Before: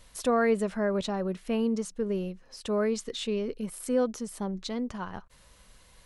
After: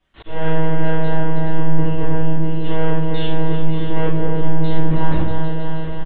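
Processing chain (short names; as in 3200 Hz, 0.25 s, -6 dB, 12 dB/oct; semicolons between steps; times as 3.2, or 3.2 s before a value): regenerating reverse delay 0.158 s, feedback 80%, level -10 dB; treble ducked by the level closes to 1400 Hz, closed at -22.5 dBFS; HPF 100 Hz 24 dB/oct; low shelf 140 Hz +7.5 dB; sample leveller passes 5; vocal rider within 4 dB 2 s; monotone LPC vocoder at 8 kHz 160 Hz; bit-crush 12-bit; air absorption 59 m; doubler 20 ms -8 dB; reverb RT60 0.55 s, pre-delay 3 ms, DRR -8.5 dB; auto swell 0.273 s; gain -12.5 dB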